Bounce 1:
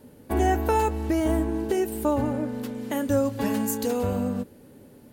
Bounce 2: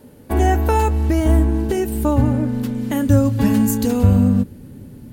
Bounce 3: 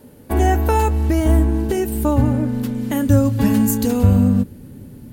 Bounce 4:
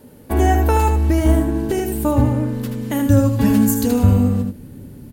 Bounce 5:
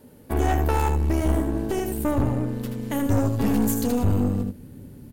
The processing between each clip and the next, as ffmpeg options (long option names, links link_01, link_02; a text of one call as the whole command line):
ffmpeg -i in.wav -af "asubboost=boost=6:cutoff=210,volume=5dB" out.wav
ffmpeg -i in.wav -af "equalizer=frequency=14000:width_type=o:width=0.99:gain=3" out.wav
ffmpeg -i in.wav -af "aecho=1:1:79:0.447" out.wav
ffmpeg -i in.wav -af "aeval=exprs='(tanh(5.01*val(0)+0.6)-tanh(0.6))/5.01':channel_layout=same,volume=-2.5dB" out.wav